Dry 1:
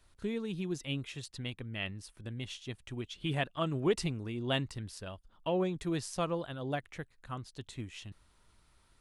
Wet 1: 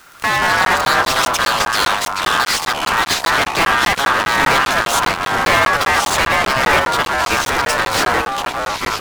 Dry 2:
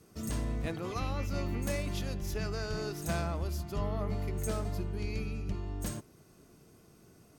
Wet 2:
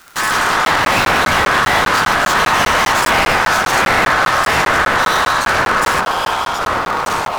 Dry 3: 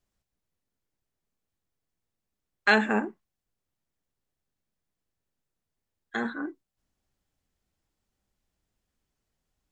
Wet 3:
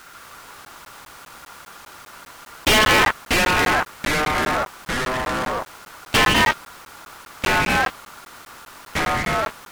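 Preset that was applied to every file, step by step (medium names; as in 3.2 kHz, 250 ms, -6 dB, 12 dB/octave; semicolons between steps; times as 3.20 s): cycle switcher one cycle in 2, inverted; high-pass 53 Hz 12 dB/octave; low-pass that closes with the level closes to 1.8 kHz, closed at -29 dBFS; tilt EQ +1.5 dB/octave; hum notches 50/100/150 Hz; fuzz box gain 46 dB, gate -50 dBFS; added noise pink -44 dBFS; ring modulator 1.4 kHz; ever faster or slower copies 134 ms, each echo -3 st, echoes 3; crackling interface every 0.20 s, samples 512, zero, from 0.65 s; trim +2.5 dB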